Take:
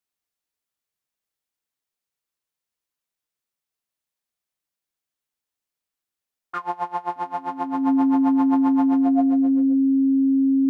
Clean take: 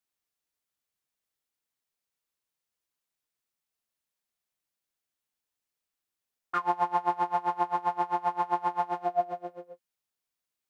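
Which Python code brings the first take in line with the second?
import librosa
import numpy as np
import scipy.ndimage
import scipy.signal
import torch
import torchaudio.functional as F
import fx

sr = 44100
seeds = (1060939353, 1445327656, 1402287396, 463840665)

y = fx.notch(x, sr, hz=270.0, q=30.0)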